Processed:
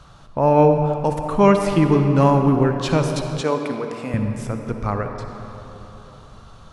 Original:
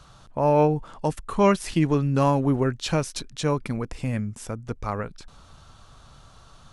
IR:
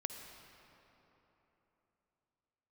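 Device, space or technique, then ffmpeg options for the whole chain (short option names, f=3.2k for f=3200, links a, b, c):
swimming-pool hall: -filter_complex "[1:a]atrim=start_sample=2205[a];[0:a][a]afir=irnorm=-1:irlink=0,highshelf=f=3.7k:g=-7,asettb=1/sr,asplit=3[b][c][d];[b]atrim=end=3.414[e];[c]atrim=start=3.41:end=4.14,asetpts=PTS-STARTPTS,afade=t=in:d=0.004:c=qsin,afade=t=out:st=0.726:d=0.004:c=qsin,highpass=290[f];[d]atrim=start=4.136[g];[e][f]acrossfade=d=0.004:c1=hsin:c2=qsin[h];[h][g]acrossfade=d=0.004:c1=qsin:c2=hsin,volume=6.5dB"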